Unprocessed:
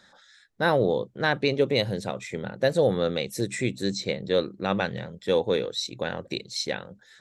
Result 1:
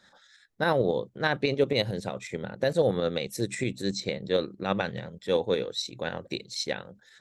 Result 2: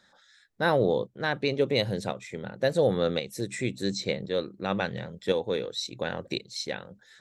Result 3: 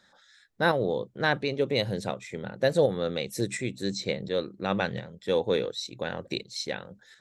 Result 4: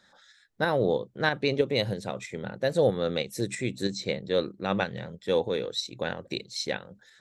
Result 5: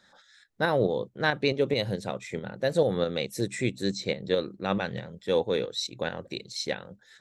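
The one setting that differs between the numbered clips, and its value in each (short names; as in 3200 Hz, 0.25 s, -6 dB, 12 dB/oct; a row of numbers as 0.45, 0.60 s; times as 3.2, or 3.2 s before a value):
tremolo, rate: 11, 0.94, 1.4, 3.1, 4.6 Hz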